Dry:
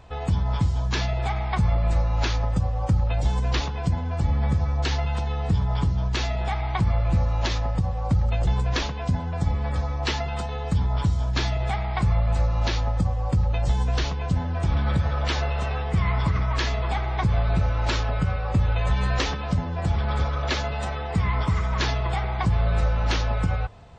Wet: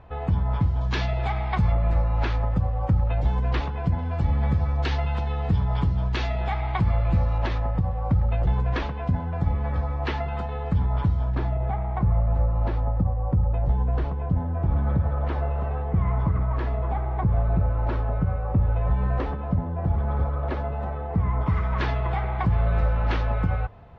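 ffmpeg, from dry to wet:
ffmpeg -i in.wav -af "asetnsamples=nb_out_samples=441:pad=0,asendcmd='0.81 lowpass f 3600;1.72 lowpass f 2200;3.99 lowpass f 3200;7.38 lowpass f 2000;11.35 lowpass f 1000;21.46 lowpass f 2100',lowpass=2000" out.wav

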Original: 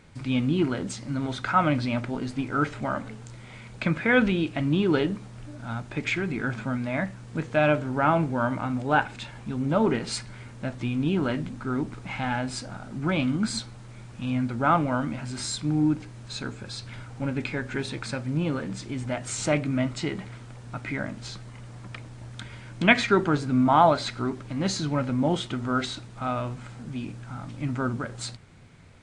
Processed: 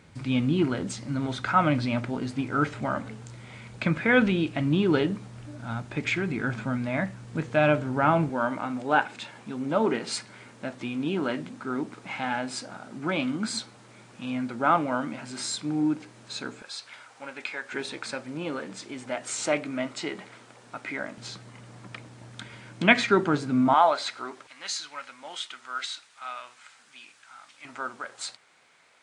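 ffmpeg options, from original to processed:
ffmpeg -i in.wav -af "asetnsamples=nb_out_samples=441:pad=0,asendcmd='8.29 highpass f 250;16.62 highpass f 740;17.72 highpass f 340;21.18 highpass f 160;23.74 highpass f 620;24.47 highpass f 1500;27.65 highpass f 720',highpass=62" out.wav

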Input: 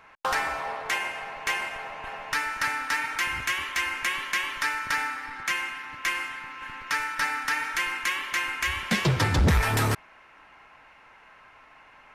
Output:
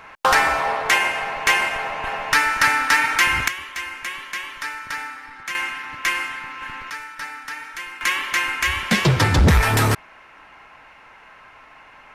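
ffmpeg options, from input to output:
ffmpeg -i in.wav -af "asetnsamples=nb_out_samples=441:pad=0,asendcmd='3.48 volume volume -2dB;5.55 volume volume 6dB;6.9 volume volume -5dB;8.01 volume volume 6.5dB',volume=10.5dB" out.wav

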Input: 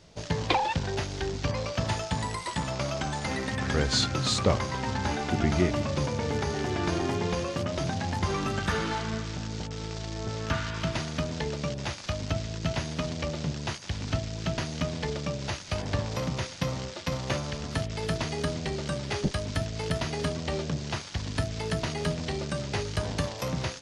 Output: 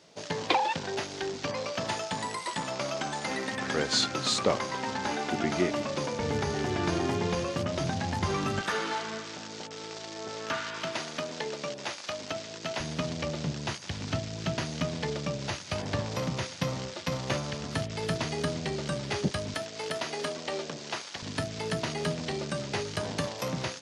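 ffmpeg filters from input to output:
ffmpeg -i in.wav -af "asetnsamples=nb_out_samples=441:pad=0,asendcmd='6.2 highpass f 85;8.61 highpass f 340;12.8 highpass f 110;19.54 highpass f 350;21.22 highpass f 150',highpass=240" out.wav

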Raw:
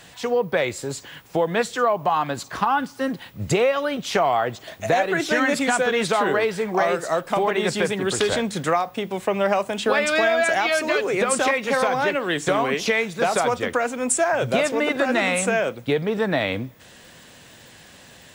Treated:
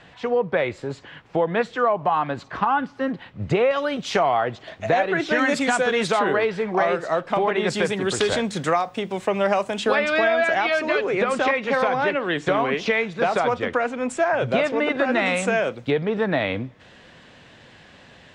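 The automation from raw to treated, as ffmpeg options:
ffmpeg -i in.wav -af "asetnsamples=nb_out_samples=441:pad=0,asendcmd='3.71 lowpass f 6500;4.23 lowpass f 3700;5.39 lowpass f 7700;6.19 lowpass f 3700;7.7 lowpass f 8100;9.95 lowpass f 3500;15.26 lowpass f 5800;15.9 lowpass f 3500',lowpass=2700" out.wav

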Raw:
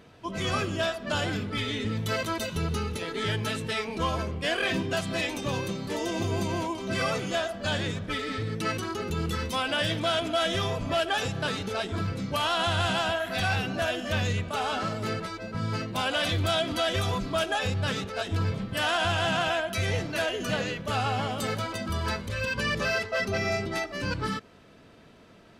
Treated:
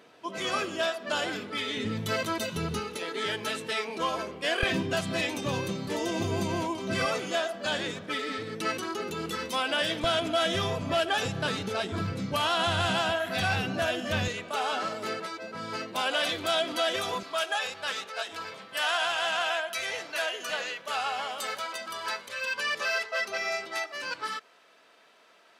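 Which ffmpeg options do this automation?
ffmpeg -i in.wav -af "asetnsamples=nb_out_samples=441:pad=0,asendcmd='1.77 highpass f 130;2.8 highpass f 310;4.63 highpass f 96;7.05 highpass f 260;10.04 highpass f 96;14.28 highpass f 340;17.23 highpass f 720',highpass=320" out.wav

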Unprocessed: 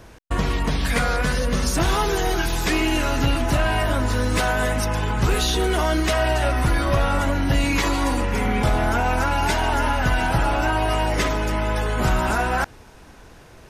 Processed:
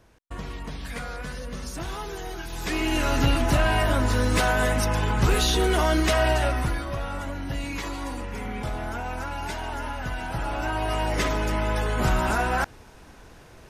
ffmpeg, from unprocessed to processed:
ffmpeg -i in.wav -af "volume=7.5dB,afade=type=in:start_time=2.48:duration=0.67:silence=0.251189,afade=type=out:start_time=6.3:duration=0.56:silence=0.316228,afade=type=in:start_time=10.26:duration=1.11:silence=0.375837" out.wav

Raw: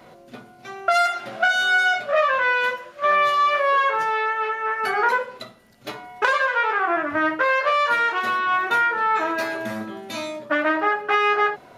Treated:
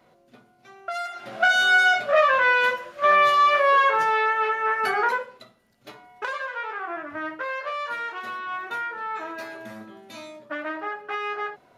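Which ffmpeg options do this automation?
ffmpeg -i in.wav -af "volume=1dB,afade=type=in:start_time=1.1:duration=0.42:silence=0.223872,afade=type=out:start_time=4.75:duration=0.63:silence=0.266073" out.wav

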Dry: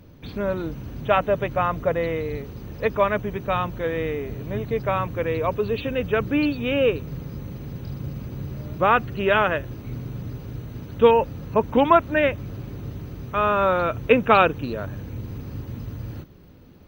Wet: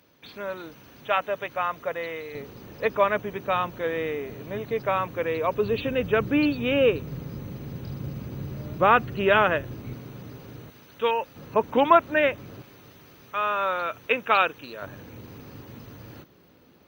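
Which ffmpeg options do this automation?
ffmpeg -i in.wav -af "asetnsamples=nb_out_samples=441:pad=0,asendcmd='2.35 highpass f 360;5.56 highpass f 110;9.93 highpass f 370;10.7 highpass f 1500;11.36 highpass f 400;12.62 highpass f 1400;14.82 highpass f 460',highpass=frequency=1200:poles=1" out.wav

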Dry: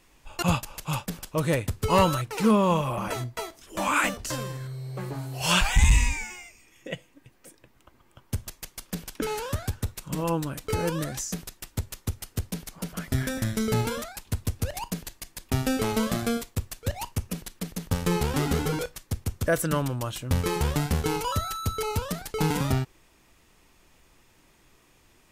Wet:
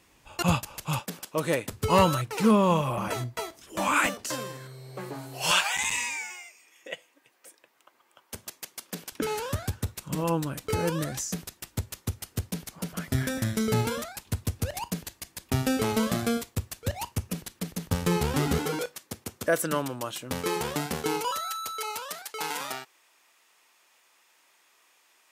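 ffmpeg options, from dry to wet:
ffmpeg -i in.wav -af "asetnsamples=nb_out_samples=441:pad=0,asendcmd='0.99 highpass f 230;1.72 highpass f 68;4.06 highpass f 220;5.51 highpass f 550;8.34 highpass f 250;9.12 highpass f 68;18.58 highpass f 240;21.31 highpass f 770',highpass=62" out.wav

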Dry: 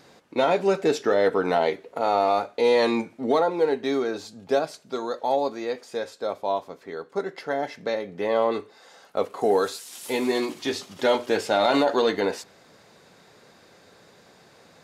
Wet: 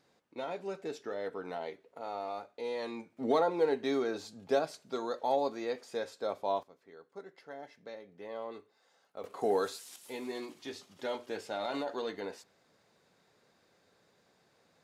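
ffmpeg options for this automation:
ffmpeg -i in.wav -af "asetnsamples=nb_out_samples=441:pad=0,asendcmd='3.17 volume volume -6.5dB;6.63 volume volume -19dB;9.24 volume volume -8.5dB;9.96 volume volume -15.5dB',volume=-17.5dB" out.wav

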